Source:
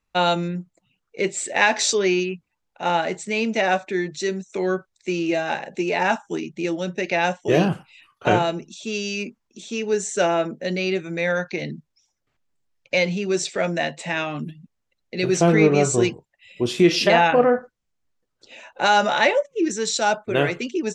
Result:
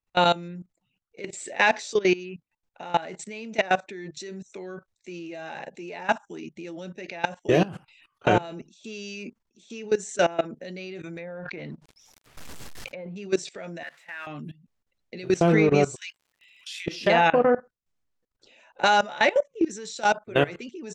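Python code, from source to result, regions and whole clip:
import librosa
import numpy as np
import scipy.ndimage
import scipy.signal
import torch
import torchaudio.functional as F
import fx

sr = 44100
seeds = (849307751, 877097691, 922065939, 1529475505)

y = fx.chain(x, sr, fx.law_mismatch(coded='A'),
    fx.env_lowpass_down(base_hz=930.0, full_db=-19.5),
    fx.pre_swell(db_per_s=28.0), at=(11.16, 13.16))
y = fx.chain(y, sr, fx.crossing_spikes(level_db=-23.5),
    fx.bandpass_q(hz=1600.0, q=2.4), at=(13.83, 14.27))
y = fx.steep_highpass(y, sr, hz=1700.0, slope=36, at=(15.94, 16.86), fade=0.02)
y = fx.dmg_crackle(y, sr, seeds[0], per_s=99.0, level_db=-46.0, at=(15.94, 16.86), fade=0.02)
y = fx.level_steps(y, sr, step_db=19)
y = fx.high_shelf(y, sr, hz=8500.0, db=-4.0)
y = y * librosa.db_to_amplitude(1.0)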